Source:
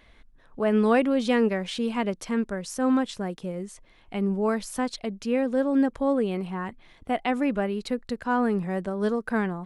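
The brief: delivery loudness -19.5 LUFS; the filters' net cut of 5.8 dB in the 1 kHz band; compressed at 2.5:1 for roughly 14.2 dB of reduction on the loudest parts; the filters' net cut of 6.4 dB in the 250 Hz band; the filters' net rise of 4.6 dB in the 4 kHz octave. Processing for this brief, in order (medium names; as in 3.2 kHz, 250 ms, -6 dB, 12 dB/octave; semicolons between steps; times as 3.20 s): peaking EQ 250 Hz -7 dB; peaking EQ 1 kHz -8 dB; peaking EQ 4 kHz +6.5 dB; compression 2.5:1, threshold -43 dBFS; trim +22 dB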